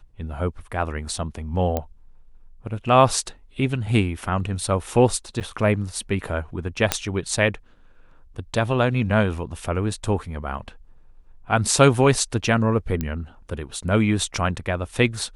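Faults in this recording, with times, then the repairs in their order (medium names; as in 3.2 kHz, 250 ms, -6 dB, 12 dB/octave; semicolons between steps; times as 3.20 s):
1.77 s: pop -11 dBFS
5.40–5.41 s: dropout 8.4 ms
6.92 s: pop -1 dBFS
13.01 s: pop -12 dBFS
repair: de-click; interpolate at 5.40 s, 8.4 ms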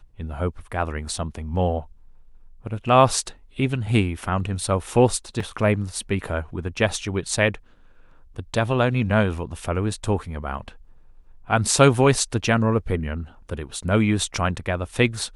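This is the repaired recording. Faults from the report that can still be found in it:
nothing left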